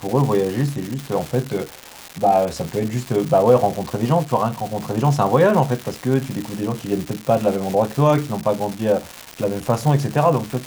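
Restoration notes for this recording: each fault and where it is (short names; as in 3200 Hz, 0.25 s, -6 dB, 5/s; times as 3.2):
crackle 410/s -23 dBFS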